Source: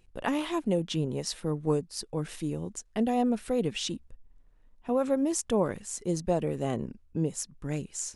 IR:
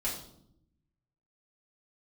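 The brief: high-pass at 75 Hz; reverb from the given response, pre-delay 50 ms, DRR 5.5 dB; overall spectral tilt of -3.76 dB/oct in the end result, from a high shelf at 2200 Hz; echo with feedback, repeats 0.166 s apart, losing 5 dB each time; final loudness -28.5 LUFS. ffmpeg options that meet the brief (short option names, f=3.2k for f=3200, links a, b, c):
-filter_complex "[0:a]highpass=75,highshelf=f=2.2k:g=8.5,aecho=1:1:166|332|498|664|830|996|1162:0.562|0.315|0.176|0.0988|0.0553|0.031|0.0173,asplit=2[a][b];[1:a]atrim=start_sample=2205,adelay=50[c];[b][c]afir=irnorm=-1:irlink=0,volume=-10dB[d];[a][d]amix=inputs=2:normalize=0,volume=-2dB"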